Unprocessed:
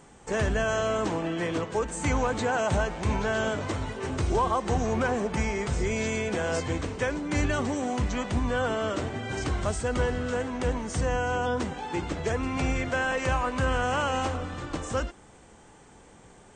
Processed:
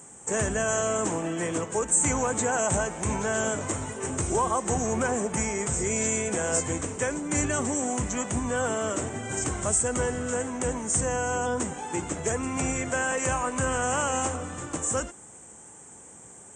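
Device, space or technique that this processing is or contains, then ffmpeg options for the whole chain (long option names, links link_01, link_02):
budget condenser microphone: -af "highpass=88,highshelf=frequency=5800:width_type=q:width=3:gain=10"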